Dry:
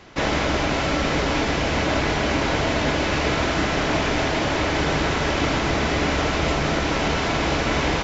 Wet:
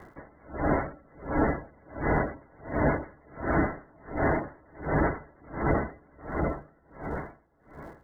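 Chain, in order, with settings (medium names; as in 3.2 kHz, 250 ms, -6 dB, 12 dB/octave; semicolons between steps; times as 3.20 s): fade out at the end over 2.48 s; steep low-pass 2.1 kHz 72 dB/octave; spectral gate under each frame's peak -15 dB strong; crackle 240 per s -51 dBFS; on a send: echo that smears into a reverb 482 ms, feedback 42%, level -13 dB; on the sum: logarithmic tremolo 1.4 Hz, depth 35 dB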